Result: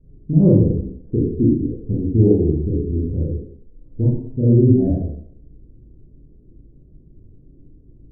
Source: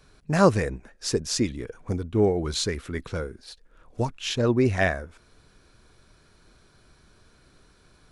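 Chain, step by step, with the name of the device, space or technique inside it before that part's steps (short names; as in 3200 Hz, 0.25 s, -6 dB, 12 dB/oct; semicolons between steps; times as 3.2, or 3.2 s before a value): next room (LPF 330 Hz 24 dB/oct; reverb RT60 0.65 s, pre-delay 27 ms, DRR -7 dB); gain +6 dB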